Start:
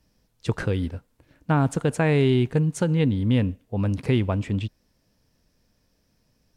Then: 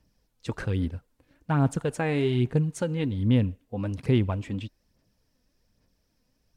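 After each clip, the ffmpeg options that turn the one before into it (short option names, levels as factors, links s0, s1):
-af "aphaser=in_gain=1:out_gain=1:delay=4:decay=0.44:speed=1.2:type=sinusoidal,volume=0.531"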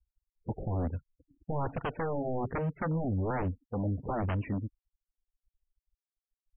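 -af "afftfilt=real='re*gte(hypot(re,im),0.00501)':imag='im*gte(hypot(re,im),0.00501)':win_size=1024:overlap=0.75,aeval=exprs='0.0501*(abs(mod(val(0)/0.0501+3,4)-2)-1)':c=same,afftfilt=real='re*lt(b*sr/1024,780*pow(3300/780,0.5+0.5*sin(2*PI*1.2*pts/sr)))':imag='im*lt(b*sr/1024,780*pow(3300/780,0.5+0.5*sin(2*PI*1.2*pts/sr)))':win_size=1024:overlap=0.75"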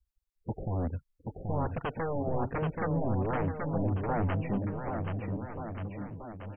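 -af "aecho=1:1:780|1482|2114|2682|3194:0.631|0.398|0.251|0.158|0.1"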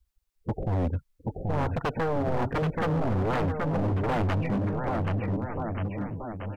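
-af "asoftclip=type=hard:threshold=0.0299,volume=2.24"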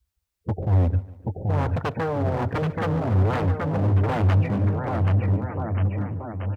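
-af "highpass=65,equalizer=f=94:t=o:w=0.5:g=9.5,aecho=1:1:145|290|435:0.119|0.0511|0.022,volume=1.19"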